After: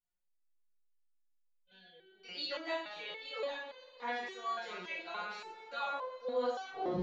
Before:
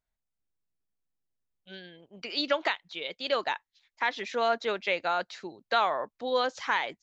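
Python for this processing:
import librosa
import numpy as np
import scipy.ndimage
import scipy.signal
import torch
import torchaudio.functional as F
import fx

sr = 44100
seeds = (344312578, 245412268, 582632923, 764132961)

y = fx.tape_stop_end(x, sr, length_s=0.53)
y = fx.rider(y, sr, range_db=3, speed_s=0.5)
y = fx.rev_double_slope(y, sr, seeds[0], early_s=0.53, late_s=4.9, knee_db=-18, drr_db=-6.5)
y = fx.resonator_held(y, sr, hz=3.5, low_hz=180.0, high_hz=510.0)
y = y * 10.0 ** (-2.0 / 20.0)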